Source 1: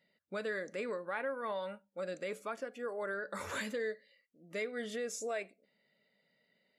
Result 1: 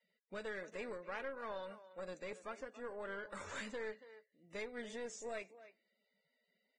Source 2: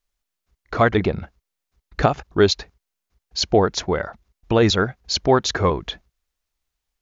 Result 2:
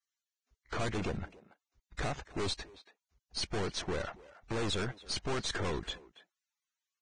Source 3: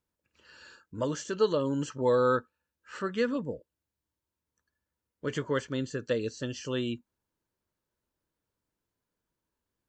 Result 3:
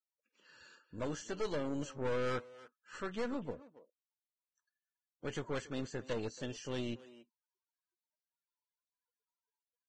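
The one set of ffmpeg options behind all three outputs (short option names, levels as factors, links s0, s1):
-filter_complex "[0:a]acrossover=split=5500[s0][s1];[s1]acompressor=threshold=0.00447:ratio=4:attack=1:release=60[s2];[s0][s2]amix=inputs=2:normalize=0,aeval=exprs='(tanh(28.2*val(0)+0.7)-tanh(0.7))/28.2':c=same,asplit=2[s3][s4];[s4]adelay=280,highpass=300,lowpass=3400,asoftclip=type=hard:threshold=0.0188,volume=0.2[s5];[s3][s5]amix=inputs=2:normalize=0,volume=0.668" -ar 22050 -c:a libvorbis -b:a 16k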